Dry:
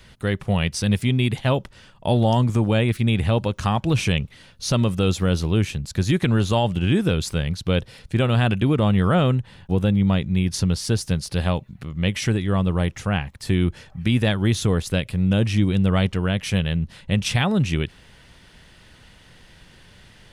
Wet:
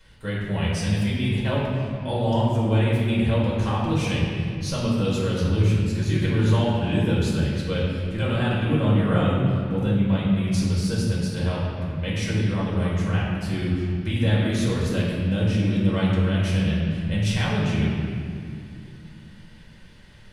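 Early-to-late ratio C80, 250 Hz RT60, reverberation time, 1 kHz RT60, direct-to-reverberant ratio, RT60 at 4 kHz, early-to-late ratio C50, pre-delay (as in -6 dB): 1.0 dB, 3.9 s, 2.4 s, 2.2 s, -7.5 dB, 1.6 s, -1.0 dB, 4 ms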